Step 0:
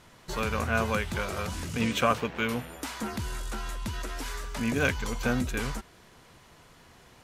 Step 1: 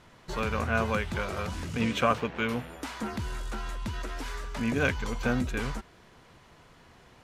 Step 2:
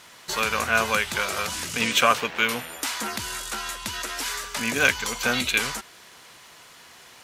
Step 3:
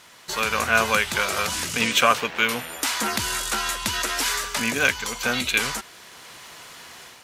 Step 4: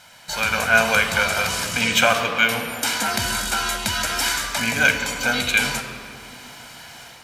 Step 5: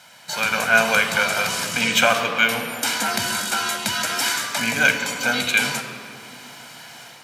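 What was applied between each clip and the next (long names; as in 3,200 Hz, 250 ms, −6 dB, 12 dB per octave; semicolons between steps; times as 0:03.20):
low-pass filter 4,000 Hz 6 dB per octave
gain on a spectral selection 0:05.33–0:05.58, 2,000–4,500 Hz +9 dB; spectral tilt +4 dB per octave; level +6 dB
automatic gain control gain up to 7 dB; level −1 dB
convolution reverb RT60 2.1 s, pre-delay 20 ms, DRR 6 dB; level −1 dB
high-pass filter 120 Hz 24 dB per octave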